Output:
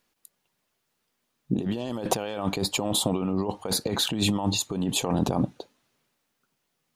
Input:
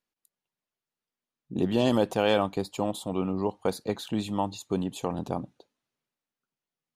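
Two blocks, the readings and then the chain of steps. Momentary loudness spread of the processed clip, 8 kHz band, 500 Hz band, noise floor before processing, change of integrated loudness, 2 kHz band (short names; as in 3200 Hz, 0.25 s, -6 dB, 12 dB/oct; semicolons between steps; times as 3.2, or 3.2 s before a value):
6 LU, +14.5 dB, -3.0 dB, under -85 dBFS, +2.0 dB, +1.5 dB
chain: negative-ratio compressor -35 dBFS, ratio -1; gain +8 dB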